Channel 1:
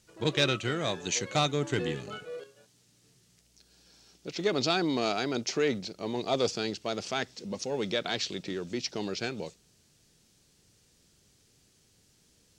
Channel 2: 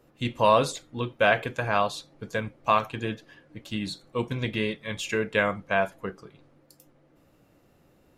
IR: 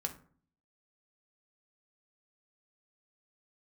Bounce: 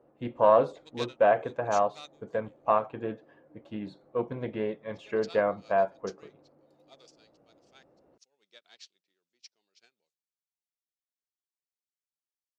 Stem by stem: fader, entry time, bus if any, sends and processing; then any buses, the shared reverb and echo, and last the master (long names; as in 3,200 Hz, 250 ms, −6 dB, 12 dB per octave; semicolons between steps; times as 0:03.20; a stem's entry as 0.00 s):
−11.0 dB, 0.60 s, no send, high-pass filter 930 Hz 6 dB per octave; spectral tilt +2.5 dB per octave; expander for the loud parts 2.5 to 1, over −40 dBFS
+0.5 dB, 0.00 s, no send, resonant band-pass 640 Hz, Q 1.2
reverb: not used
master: spectral tilt −2 dB per octave; highs frequency-modulated by the lows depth 0.11 ms